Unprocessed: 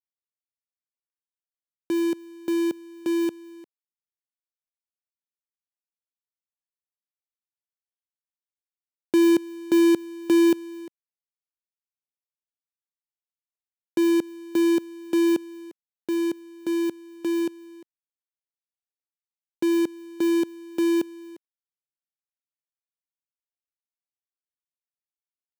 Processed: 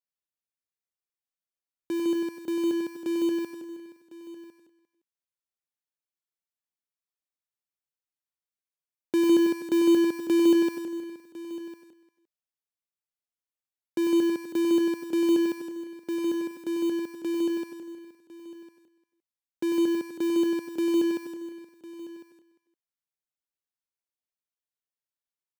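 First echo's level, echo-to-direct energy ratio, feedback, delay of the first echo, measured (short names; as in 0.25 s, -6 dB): -7.0 dB, -0.5 dB, no steady repeat, 97 ms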